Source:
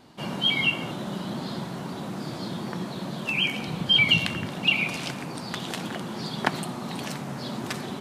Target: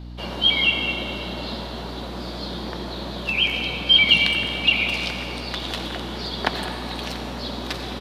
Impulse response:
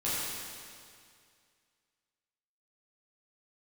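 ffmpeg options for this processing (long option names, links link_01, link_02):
-filter_complex "[0:a]equalizer=frequency=125:width_type=o:width=1:gain=-12,equalizer=frequency=500:width_type=o:width=1:gain=4,equalizer=frequency=4000:width_type=o:width=1:gain=9,equalizer=frequency=8000:width_type=o:width=1:gain=-7,asplit=2[link_01][link_02];[link_02]adelay=210,highpass=300,lowpass=3400,asoftclip=type=hard:threshold=-11.5dB,volume=-11dB[link_03];[link_01][link_03]amix=inputs=2:normalize=0,asplit=2[link_04][link_05];[1:a]atrim=start_sample=2205,adelay=87[link_06];[link_05][link_06]afir=irnorm=-1:irlink=0,volume=-14dB[link_07];[link_04][link_07]amix=inputs=2:normalize=0,aeval=exprs='val(0)+0.0178*(sin(2*PI*60*n/s)+sin(2*PI*2*60*n/s)/2+sin(2*PI*3*60*n/s)/3+sin(2*PI*4*60*n/s)/4+sin(2*PI*5*60*n/s)/5)':channel_layout=same"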